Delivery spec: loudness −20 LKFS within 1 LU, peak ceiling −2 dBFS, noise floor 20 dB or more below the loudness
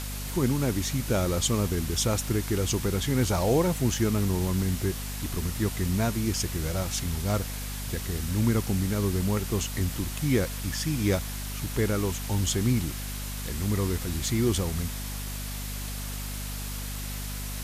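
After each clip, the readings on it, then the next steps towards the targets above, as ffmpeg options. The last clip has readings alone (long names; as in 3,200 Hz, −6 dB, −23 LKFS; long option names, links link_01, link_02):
mains hum 50 Hz; hum harmonics up to 250 Hz; level of the hum −33 dBFS; background noise floor −34 dBFS; target noise floor −48 dBFS; integrated loudness −28.0 LKFS; sample peak −11.0 dBFS; target loudness −20.0 LKFS
→ -af "bandreject=frequency=50:width_type=h:width=6,bandreject=frequency=100:width_type=h:width=6,bandreject=frequency=150:width_type=h:width=6,bandreject=frequency=200:width_type=h:width=6,bandreject=frequency=250:width_type=h:width=6"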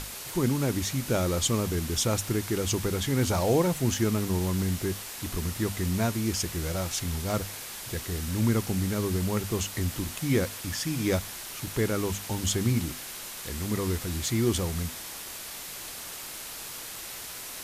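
mains hum none found; background noise floor −40 dBFS; target noise floor −49 dBFS
→ -af "afftdn=noise_reduction=9:noise_floor=-40"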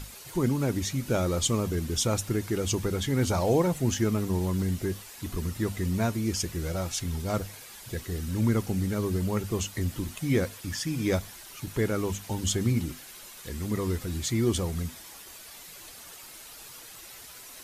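background noise floor −47 dBFS; target noise floor −49 dBFS
→ -af "afftdn=noise_reduction=6:noise_floor=-47"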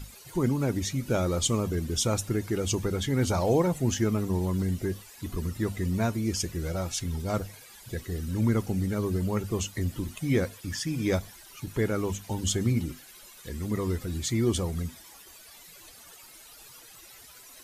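background noise floor −51 dBFS; integrated loudness −29.0 LKFS; sample peak −13.0 dBFS; target loudness −20.0 LKFS
→ -af "volume=9dB"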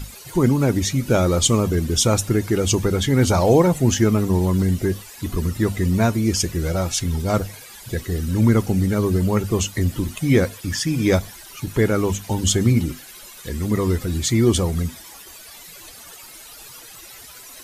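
integrated loudness −20.0 LKFS; sample peak −4.0 dBFS; background noise floor −42 dBFS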